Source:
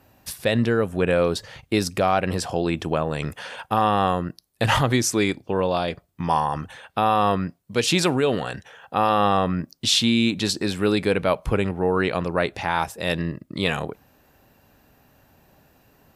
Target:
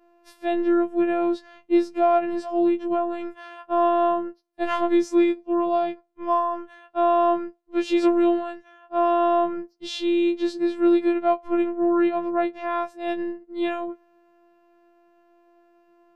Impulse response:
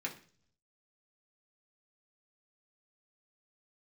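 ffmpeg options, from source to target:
-af "bandpass=f=420:t=q:w=0.72:csg=0,afftfilt=real='hypot(re,im)*cos(PI*b)':imag='0':win_size=512:overlap=0.75,afftfilt=real='re*2.83*eq(mod(b,8),0)':imag='im*2.83*eq(mod(b,8),0)':win_size=2048:overlap=0.75"

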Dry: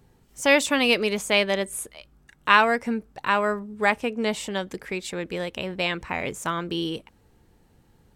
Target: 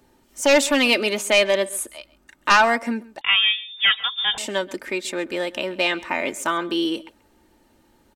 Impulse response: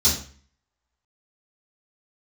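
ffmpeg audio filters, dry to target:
-filter_complex "[0:a]aecho=1:1:3.3:0.52,acrossover=split=200[a][b];[a]acompressor=threshold=-49dB:ratio=6[c];[b]aeval=exprs='0.891*sin(PI/2*2.24*val(0)/0.891)':c=same[d];[c][d]amix=inputs=2:normalize=0,asplit=2[e][f];[f]adelay=134.1,volume=-20dB,highshelf=f=4k:g=-3.02[g];[e][g]amix=inputs=2:normalize=0,asettb=1/sr,asplit=3[h][i][j];[h]atrim=end=3.214[k];[i]atrim=start=3.21:end=4.38,asetpts=PTS-STARTPTS,afade=t=in:d=0.004:c=qsin,afade=t=out:st=1.166:d=0.004:c=qsin,lowpass=f=3.2k:t=q:w=0.5098,lowpass=f=3.2k:t=q:w=0.6013,lowpass=f=3.2k:t=q:w=0.9,lowpass=f=3.2k:t=q:w=2.563,afreqshift=-3800[l];[j]atrim=start=4.376[m];[k][l]acrossfade=d=0.004:c1=hsin:c2=qsin[n];[n][m]acrossfade=d=0.004:c1=qsin:c2=hsin,volume=-7dB"

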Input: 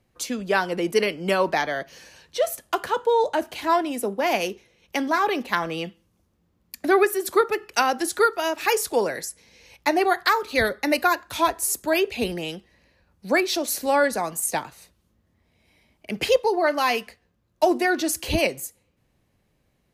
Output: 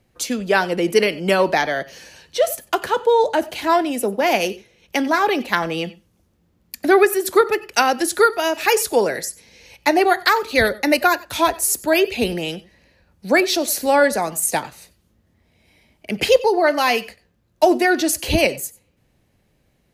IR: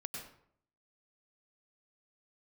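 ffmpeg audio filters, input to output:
-filter_complex "[0:a]asplit=2[a][b];[b]equalizer=f=1.1k:w=6.9:g=-14[c];[1:a]atrim=start_sample=2205,afade=t=out:st=0.14:d=0.01,atrim=end_sample=6615[d];[c][d]afir=irnorm=-1:irlink=0,volume=2.5dB[e];[a][e]amix=inputs=2:normalize=0"

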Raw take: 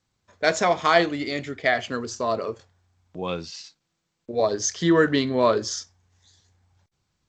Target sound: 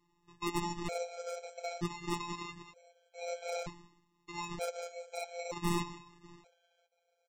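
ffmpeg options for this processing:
-filter_complex "[0:a]afftfilt=real='re*pow(10,8/40*sin(2*PI*(1.3*log(max(b,1)*sr/1024/100)/log(2)-(-2.2)*(pts-256)/sr)))':imag='im*pow(10,8/40*sin(2*PI*(1.3*log(max(b,1)*sr/1024/100)/log(2)-(-2.2)*(pts-256)/sr)))':win_size=1024:overlap=0.75,highpass=41,asplit=2[a][b];[b]adelay=190,lowpass=f=3.8k:p=1,volume=-18.5dB,asplit=2[c][d];[d]adelay=190,lowpass=f=3.8k:p=1,volume=0.34,asplit=2[e][f];[f]adelay=190,lowpass=f=3.8k:p=1,volume=0.34[g];[c][e][g]amix=inputs=3:normalize=0[h];[a][h]amix=inputs=2:normalize=0,acrossover=split=150|3000[i][j][k];[j]acompressor=threshold=-31dB:ratio=2.5[l];[i][l][k]amix=inputs=3:normalize=0,lowshelf=f=130:g=8.5,bandreject=f=2.4k:w=18,acompressor=threshold=-29dB:ratio=8,firequalizer=gain_entry='entry(100,0);entry(160,-27);entry(470,-4);entry(830,2);entry(1400,-21);entry(2600,7)':delay=0.05:min_phase=1,aresample=16000,acrusher=samples=10:mix=1:aa=0.000001,aresample=44100,aeval=exprs='0.0668*(abs(mod(val(0)/0.0668+3,4)-2)-1)':c=same,afftfilt=real='hypot(re,im)*cos(PI*b)':imag='0':win_size=1024:overlap=0.75,afftfilt=real='re*gt(sin(2*PI*0.54*pts/sr)*(1-2*mod(floor(b*sr/1024/430),2)),0)':imag='im*gt(sin(2*PI*0.54*pts/sr)*(1-2*mod(floor(b*sr/1024/430),2)),0)':win_size=1024:overlap=0.75,volume=3.5dB"

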